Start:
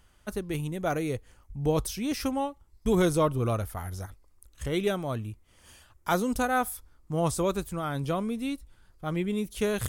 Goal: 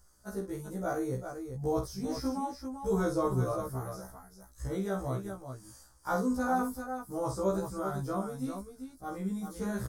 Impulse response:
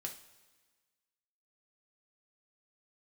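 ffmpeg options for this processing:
-filter_complex "[0:a]acrossover=split=3600[link_01][link_02];[link_02]acompressor=threshold=-55dB:ratio=4:attack=1:release=60[link_03];[link_01][link_03]amix=inputs=2:normalize=0,firequalizer=gain_entry='entry(1400,0);entry(2700,-20);entry(4900,9)':delay=0.05:min_phase=1,asplit=2[link_04][link_05];[link_05]aecho=0:1:48|393:0.422|0.422[link_06];[link_04][link_06]amix=inputs=2:normalize=0,afftfilt=real='re*1.73*eq(mod(b,3),0)':imag='im*1.73*eq(mod(b,3),0)':win_size=2048:overlap=0.75,volume=-2.5dB"

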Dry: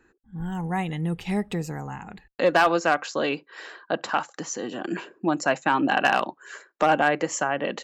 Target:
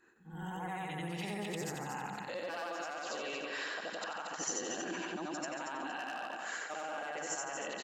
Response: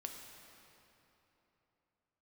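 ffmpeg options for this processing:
-filter_complex "[0:a]afftfilt=real='re':imag='-im':win_size=8192:overlap=0.75,highpass=frequency=460:poles=1,acompressor=threshold=-42dB:ratio=12,asplit=2[link_01][link_02];[link_02]aecho=0:1:232|464|696|928:0.447|0.138|0.0429|0.0133[link_03];[link_01][link_03]amix=inputs=2:normalize=0,dynaudnorm=framelen=240:gausssize=9:maxgain=6dB,acrossover=split=4000[link_04][link_05];[link_04]alimiter=level_in=11.5dB:limit=-24dB:level=0:latency=1:release=23,volume=-11.5dB[link_06];[link_06][link_05]amix=inputs=2:normalize=0,volume=3.5dB"

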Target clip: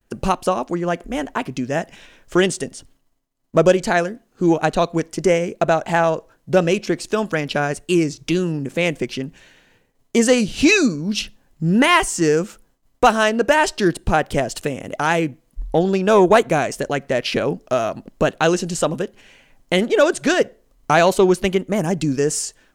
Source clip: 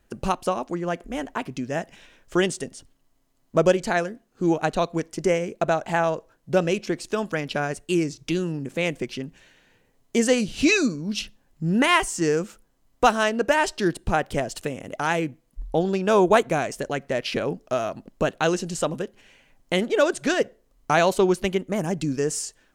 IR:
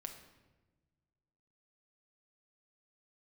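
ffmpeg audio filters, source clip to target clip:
-af "agate=range=-33dB:threshold=-57dB:ratio=3:detection=peak,acontrast=45"

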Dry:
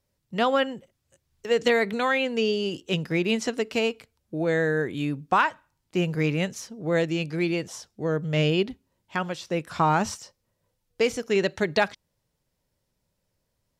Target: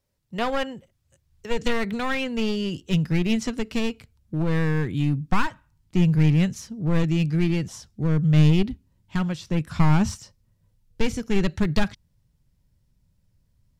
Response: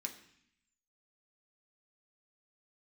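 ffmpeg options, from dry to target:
-af "aeval=exprs='clip(val(0),-1,0.0562)':channel_layout=same,asubboost=boost=7:cutoff=180,volume=-1dB"

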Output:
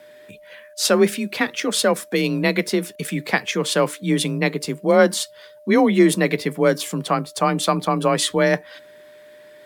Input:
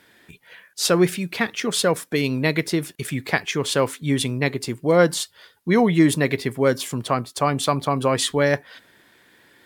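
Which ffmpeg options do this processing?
ffmpeg -i in.wav -af "aeval=exprs='val(0)+0.00562*sin(2*PI*570*n/s)':channel_layout=same,afreqshift=31,volume=1.5dB" out.wav

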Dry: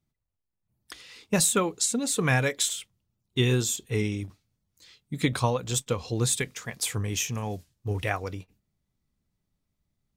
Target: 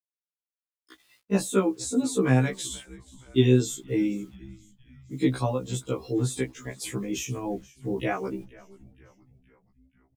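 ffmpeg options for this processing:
ffmpeg -i in.wav -filter_complex "[0:a]afftdn=noise_reduction=25:noise_floor=-43,equalizer=frequency=310:width_type=o:width=1.3:gain=12.5,acrossover=split=140|1400[link_01][link_02][link_03];[link_03]alimiter=limit=-20dB:level=0:latency=1:release=18[link_04];[link_01][link_02][link_04]amix=inputs=3:normalize=0,dynaudnorm=framelen=260:gausssize=11:maxgain=7dB,acrusher=bits=8:mix=0:aa=0.000001,asplit=2[link_05][link_06];[link_06]asplit=4[link_07][link_08][link_09][link_10];[link_07]adelay=475,afreqshift=-90,volume=-22.5dB[link_11];[link_08]adelay=950,afreqshift=-180,volume=-27.9dB[link_12];[link_09]adelay=1425,afreqshift=-270,volume=-33.2dB[link_13];[link_10]adelay=1900,afreqshift=-360,volume=-38.6dB[link_14];[link_11][link_12][link_13][link_14]amix=inputs=4:normalize=0[link_15];[link_05][link_15]amix=inputs=2:normalize=0,afftfilt=real='re*1.73*eq(mod(b,3),0)':imag='im*1.73*eq(mod(b,3),0)':win_size=2048:overlap=0.75,volume=-5dB" out.wav

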